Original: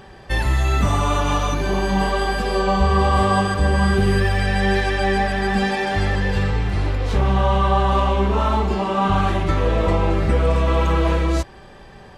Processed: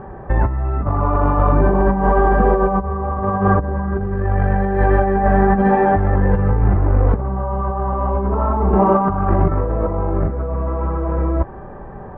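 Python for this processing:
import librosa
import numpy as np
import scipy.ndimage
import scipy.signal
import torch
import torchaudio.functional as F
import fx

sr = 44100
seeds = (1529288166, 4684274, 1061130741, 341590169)

y = scipy.signal.sosfilt(scipy.signal.butter(4, 1300.0, 'lowpass', fs=sr, output='sos'), x)
y = fx.over_compress(y, sr, threshold_db=-21.0, ratio=-0.5)
y = F.gain(torch.from_numpy(y), 6.0).numpy()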